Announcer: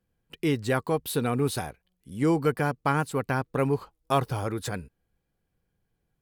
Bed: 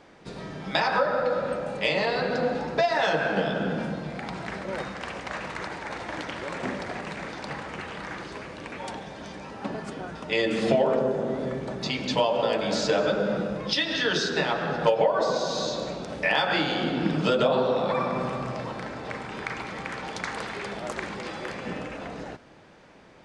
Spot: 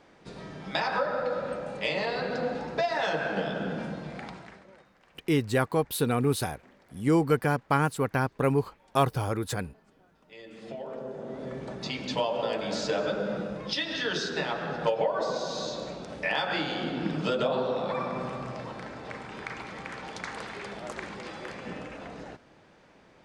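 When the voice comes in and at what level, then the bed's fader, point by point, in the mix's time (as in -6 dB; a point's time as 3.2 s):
4.85 s, +0.5 dB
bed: 4.23 s -4.5 dB
4.86 s -26.5 dB
10.16 s -26.5 dB
11.63 s -5 dB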